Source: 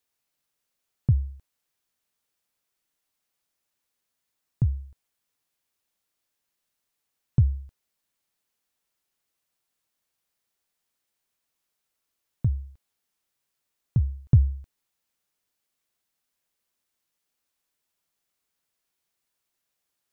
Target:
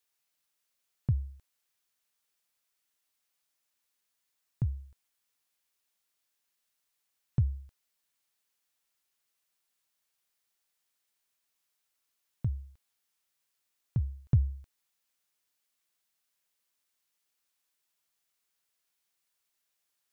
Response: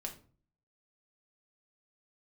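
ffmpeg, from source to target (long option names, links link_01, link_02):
-af "tiltshelf=frequency=770:gain=-4,volume=-3.5dB"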